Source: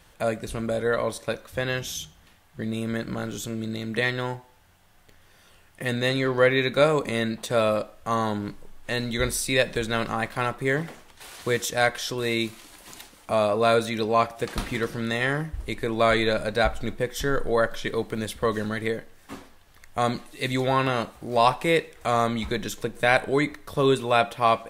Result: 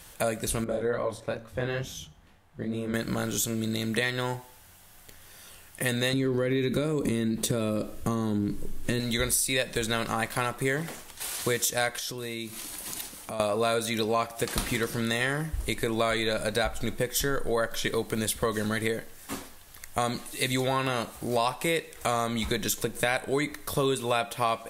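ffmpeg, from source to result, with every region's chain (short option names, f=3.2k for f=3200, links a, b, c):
-filter_complex "[0:a]asettb=1/sr,asplit=3[a][b][c];[a]atrim=end=0.644[d];[b]atrim=start=0.64:end=2.94,asetpts=PTS-STARTPTS,afade=t=in:d=0.004:c=qsin,afade=t=out:st=2.296:d=0.004:c=qsin,flanger=delay=19.5:depth=6.6:speed=2.3,lowpass=f=1.1k:p=1,bandreject=f=114.1:t=h:w=4,bandreject=f=228.2:t=h:w=4[e];[c]atrim=start=2.936[f];[d][e]acrossfade=d=0.004:c1=hsin:c2=qsin[g];[g][f]acrossfade=d=0.004:c1=qsin:c2=hsin,asettb=1/sr,asplit=3[h][i][j];[h]atrim=end=6.134[k];[i]atrim=start=6.13:end=9,asetpts=PTS-STARTPTS,afade=t=in:d=0.004:c=qsin,afade=t=out:st=2.866:d=0.004:c=qsin,lowshelf=f=490:t=q:w=1.5:g=10.5,acompressor=threshold=-19dB:ratio=6:attack=3.2:release=140:knee=1:detection=peak[l];[j]atrim=start=8.996[m];[k][l]acrossfade=d=0.004:c1=hsin:c2=qsin[n];[n][m]acrossfade=d=0.004:c1=qsin:c2=hsin,asettb=1/sr,asplit=3[o][p][q];[o]atrim=end=11.994[r];[p]atrim=start=11.99:end=13.4,asetpts=PTS-STARTPTS,afade=t=in:d=0.004:c=qsin,afade=t=out:st=1.406:d=0.004:c=qsin,equalizer=f=170:t=o:w=2.2:g=4,bandreject=f=7.4k:w=22,acompressor=threshold=-40dB:ratio=3:attack=3.2:release=140:knee=1:detection=peak[s];[q]atrim=start=13.396[t];[r][s]acrossfade=d=0.004:c1=hsin:c2=qsin[u];[u][t]acrossfade=d=0.004:c1=qsin:c2=hsin,equalizer=f=12k:t=o:w=1.8:g=12,acompressor=threshold=-27dB:ratio=4,volume=2.5dB"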